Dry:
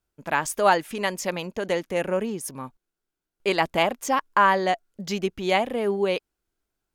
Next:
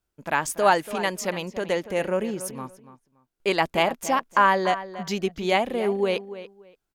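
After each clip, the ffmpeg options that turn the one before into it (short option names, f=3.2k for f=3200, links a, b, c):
-filter_complex "[0:a]asplit=2[a][b];[b]adelay=286,lowpass=f=3.4k:p=1,volume=-13.5dB,asplit=2[c][d];[d]adelay=286,lowpass=f=3.4k:p=1,volume=0.21[e];[a][c][e]amix=inputs=3:normalize=0"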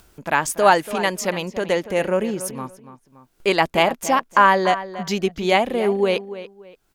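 -af "acompressor=mode=upward:threshold=-40dB:ratio=2.5,volume=4.5dB"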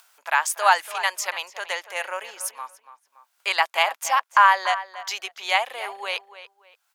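-af "highpass=f=820:w=0.5412,highpass=f=820:w=1.3066"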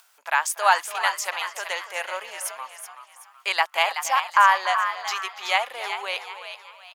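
-filter_complex "[0:a]asplit=5[a][b][c][d][e];[b]adelay=377,afreqshift=85,volume=-9dB[f];[c]adelay=754,afreqshift=170,volume=-17.4dB[g];[d]adelay=1131,afreqshift=255,volume=-25.8dB[h];[e]adelay=1508,afreqshift=340,volume=-34.2dB[i];[a][f][g][h][i]amix=inputs=5:normalize=0,volume=-1dB"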